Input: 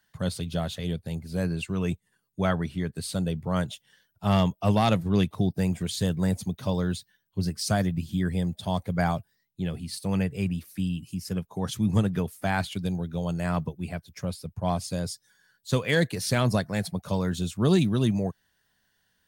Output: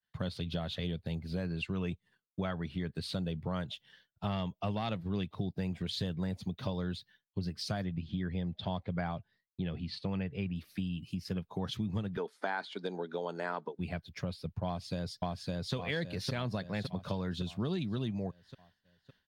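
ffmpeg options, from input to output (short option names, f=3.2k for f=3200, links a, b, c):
-filter_complex "[0:a]asettb=1/sr,asplit=3[a][b][c];[a]atrim=end=7.844[d];[b]atrim=start=7.84:end=10.56,asetpts=PTS-STARTPTS,afade=t=in:d=0.004:c=qsin,afade=t=out:st=2.716:d=0.004:c=qsin,lowpass=4k[e];[c]atrim=start=10.556[f];[d][e]acrossfade=d=0.004:c1=hsin:c2=qsin[g];[g][f]acrossfade=d=0.004:c1=qsin:c2=hsin,asettb=1/sr,asplit=3[h][i][j];[h]atrim=end=12.174[k];[i]atrim=start=12.17:end=13.79,asetpts=PTS-STARTPTS,afade=t=in:d=0.004:c=qsin,afade=t=out:st=1.616:d=0.004:c=qsin,highpass=f=260:w=0.5412,highpass=f=260:w=1.3066,equalizer=f=430:t=q:w=4:g=7,equalizer=f=910:t=q:w=4:g=7,equalizer=f=1.5k:t=q:w=4:g=6,equalizer=f=2.7k:t=q:w=4:g=-8,lowpass=f=9.4k:w=0.5412,lowpass=f=9.4k:w=1.3066[l];[j]atrim=start=13.786[m];[k][l]acrossfade=d=0.004:c1=hsin:c2=qsin[n];[n][m]acrossfade=d=0.004:c1=qsin:c2=hsin,asplit=2[o][p];[p]afade=t=in:st=14.66:d=0.01,afade=t=out:st=15.74:d=0.01,aecho=0:1:560|1120|1680|2240|2800|3360|3920:0.944061|0.47203|0.236015|0.118008|0.0590038|0.0295019|0.014751[q];[o][q]amix=inputs=2:normalize=0,acompressor=threshold=-33dB:ratio=5,agate=range=-33dB:threshold=-59dB:ratio=3:detection=peak,highshelf=f=5.6k:t=q:w=1.5:g=-12"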